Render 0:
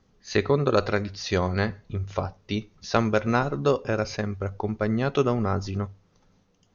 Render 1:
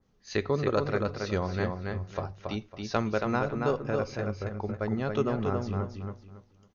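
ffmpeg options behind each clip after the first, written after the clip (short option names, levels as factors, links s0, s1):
-filter_complex "[0:a]asplit=2[s0][s1];[s1]adelay=277,lowpass=f=4600:p=1,volume=0.631,asplit=2[s2][s3];[s3]adelay=277,lowpass=f=4600:p=1,volume=0.27,asplit=2[s4][s5];[s5]adelay=277,lowpass=f=4600:p=1,volume=0.27,asplit=2[s6][s7];[s7]adelay=277,lowpass=f=4600:p=1,volume=0.27[s8];[s2][s4][s6][s8]amix=inputs=4:normalize=0[s9];[s0][s9]amix=inputs=2:normalize=0,adynamicequalizer=threshold=0.01:dfrequency=2200:dqfactor=0.7:tfrequency=2200:tqfactor=0.7:attack=5:release=100:ratio=0.375:range=2.5:mode=cutabove:tftype=highshelf,volume=0.501"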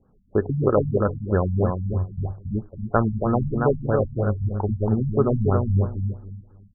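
-af "asubboost=boost=2:cutoff=130,afftfilt=real='re*lt(b*sr/1024,210*pow(1800/210,0.5+0.5*sin(2*PI*3.1*pts/sr)))':imag='im*lt(b*sr/1024,210*pow(1800/210,0.5+0.5*sin(2*PI*3.1*pts/sr)))':win_size=1024:overlap=0.75,volume=2.66"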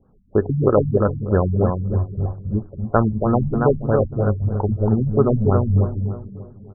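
-filter_complex "[0:a]lowpass=1600,asplit=2[s0][s1];[s1]adelay=590,lowpass=f=980:p=1,volume=0.158,asplit=2[s2][s3];[s3]adelay=590,lowpass=f=980:p=1,volume=0.3,asplit=2[s4][s5];[s5]adelay=590,lowpass=f=980:p=1,volume=0.3[s6];[s0][s2][s4][s6]amix=inputs=4:normalize=0,volume=1.5"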